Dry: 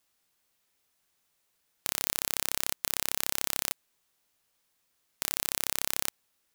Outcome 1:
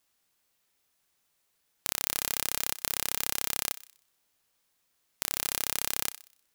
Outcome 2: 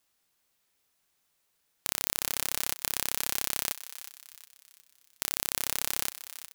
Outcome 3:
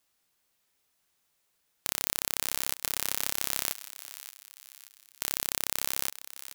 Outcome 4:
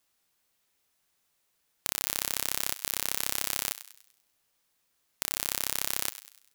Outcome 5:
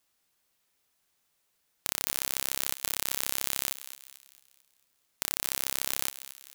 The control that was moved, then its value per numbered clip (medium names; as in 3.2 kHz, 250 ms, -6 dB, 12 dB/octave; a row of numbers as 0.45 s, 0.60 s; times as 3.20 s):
thinning echo, time: 62 ms, 363 ms, 578 ms, 98 ms, 223 ms